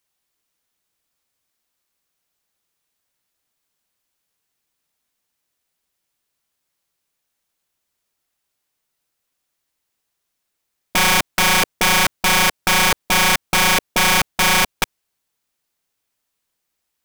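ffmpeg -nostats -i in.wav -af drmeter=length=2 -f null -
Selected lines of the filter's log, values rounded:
Channel 1: DR: 5.8
Overall DR: 5.8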